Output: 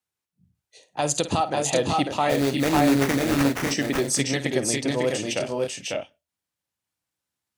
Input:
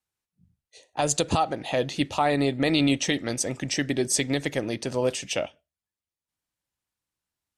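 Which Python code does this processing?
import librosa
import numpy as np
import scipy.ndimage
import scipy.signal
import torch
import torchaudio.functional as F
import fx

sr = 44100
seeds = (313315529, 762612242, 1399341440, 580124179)

y = scipy.signal.sosfilt(scipy.signal.butter(2, 79.0, 'highpass', fs=sr, output='sos'), x)
y = fx.sample_hold(y, sr, seeds[0], rate_hz=4100.0, jitter_pct=20, at=(2.29, 3.63), fade=0.02)
y = fx.echo_multitap(y, sr, ms=(53, 548, 577), db=(-12.5, -3.0, -6.0))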